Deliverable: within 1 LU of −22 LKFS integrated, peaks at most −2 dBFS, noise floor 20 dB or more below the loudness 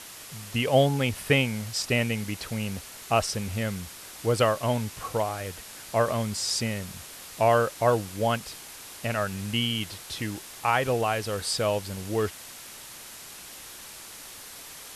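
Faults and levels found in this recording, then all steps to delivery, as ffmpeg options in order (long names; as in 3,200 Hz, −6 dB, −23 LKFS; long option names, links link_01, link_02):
background noise floor −44 dBFS; target noise floor −47 dBFS; integrated loudness −27.0 LKFS; sample peak −8.0 dBFS; target loudness −22.0 LKFS
→ -af "afftdn=noise_reduction=6:noise_floor=-44"
-af "volume=5dB"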